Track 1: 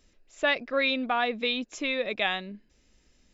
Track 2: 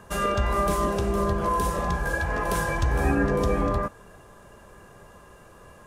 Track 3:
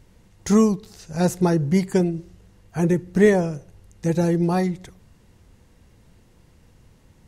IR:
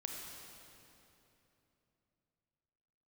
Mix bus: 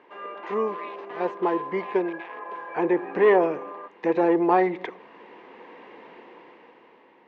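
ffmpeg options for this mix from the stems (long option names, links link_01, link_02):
-filter_complex "[0:a]alimiter=limit=-21.5dB:level=0:latency=1:release=251,acrusher=bits=4:mix=0:aa=0.000001,aeval=exprs='val(0)*sin(2*PI*410*n/s+410*0.9/0.7*sin(2*PI*0.7*n/s))':channel_layout=same,volume=-14dB,asplit=2[link_01][link_02];[1:a]volume=-9.5dB[link_03];[2:a]dynaudnorm=framelen=270:gausssize=9:maxgain=15dB,volume=1dB[link_04];[link_02]apad=whole_len=320740[link_05];[link_04][link_05]sidechaincompress=threshold=-54dB:ratio=5:attack=5.8:release=875[link_06];[link_01][link_06]amix=inputs=2:normalize=0,acontrast=84,alimiter=limit=-9dB:level=0:latency=1:release=103,volume=0dB[link_07];[link_03][link_07]amix=inputs=2:normalize=0,highpass=frequency=350:width=0.5412,highpass=frequency=350:width=1.3066,equalizer=frequency=610:width_type=q:width=4:gain=-5,equalizer=frequency=980:width_type=q:width=4:gain=5,equalizer=frequency=1400:width_type=q:width=4:gain=-7,lowpass=frequency=2500:width=0.5412,lowpass=frequency=2500:width=1.3066"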